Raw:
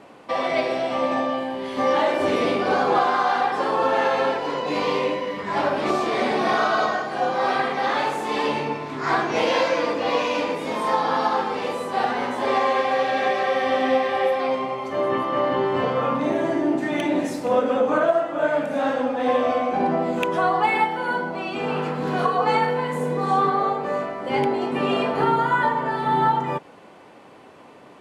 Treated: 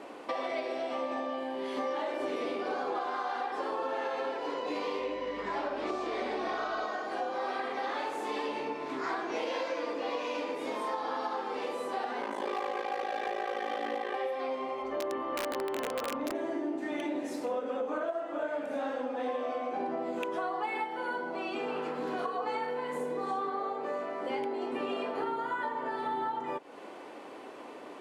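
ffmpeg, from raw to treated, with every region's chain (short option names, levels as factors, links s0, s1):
-filter_complex "[0:a]asettb=1/sr,asplit=3[s0][s1][s2];[s0]atrim=end=5.004[s3];[s1]atrim=start=5:end=6.85,asetpts=PTS-STARTPTS,afade=t=in:d=0.004:c=qsin,afade=t=out:st=1.846:d=0.004:c=qsin,lowpass=8100,aeval=exprs='val(0)+0.0126*(sin(2*PI*50*n/s)+sin(2*PI*2*50*n/s)/2+sin(2*PI*3*50*n/s)/3+sin(2*PI*4*50*n/s)/4+sin(2*PI*5*50*n/s)/5)':c=same[s4];[s2]atrim=start=6.846[s5];[s3][s4]acrossfade=d=0.004:c1=hsin:c2=qsin[s6];[s6][s5]acrossfade=d=0.004:c1=qsin:c2=hsin,asettb=1/sr,asplit=3[s7][s8][s9];[s7]atrim=end=12.214[s10];[s8]atrim=start=12.21:end=14.15,asetpts=PTS-STARTPTS,afade=t=in:d=0.004:c=qsin,afade=t=out:st=1.936:d=0.004:c=qsin,aecho=1:1:5.1:0.88,atrim=end_sample=85554,aeval=exprs='val(0)*sin(2*PI*27*n/s)':c=same,volume=5.62,asoftclip=hard,volume=0.178[s11];[s9]atrim=start=14.146[s12];[s10][s11]acrossfade=d=0.004:c1=hsin:c2=qsin[s13];[s13][s12]acrossfade=d=0.004:c1=qsin:c2=hsin,asettb=1/sr,asplit=3[s14][s15][s16];[s14]atrim=end=14.824[s17];[s15]atrim=start=14.82:end=16.35,asetpts=PTS-STARTPTS,afade=t=in:d=0.004:c=qsin,afade=t=out:st=1.526:d=0.004:c=qsin,lowpass=f=2600:p=1,aeval=exprs='val(0)+0.00631*(sin(2*PI*50*n/s)+sin(2*PI*2*50*n/s)/2+sin(2*PI*3*50*n/s)/3+sin(2*PI*4*50*n/s)/4+sin(2*PI*5*50*n/s)/5)':c=same,aeval=exprs='(mod(5.01*val(0)+1,2)-1)/5.01':c=same[s18];[s16]atrim=start=16.346[s19];[s17][s18]acrossfade=d=0.004:c1=hsin:c2=qsin[s20];[s20][s19]acrossfade=d=0.004:c1=qsin:c2=hsin,lowshelf=f=210:t=q:w=1.5:g=-11.5,acompressor=threshold=0.02:ratio=4"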